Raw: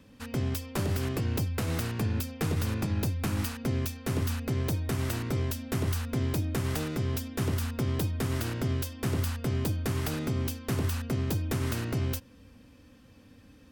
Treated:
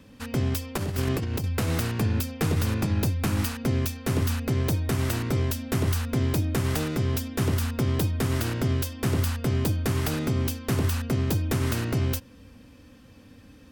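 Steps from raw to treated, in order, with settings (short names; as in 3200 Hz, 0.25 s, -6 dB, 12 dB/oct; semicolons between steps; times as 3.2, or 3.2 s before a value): 0.76–1.44 negative-ratio compressor -31 dBFS, ratio -0.5; gain +4.5 dB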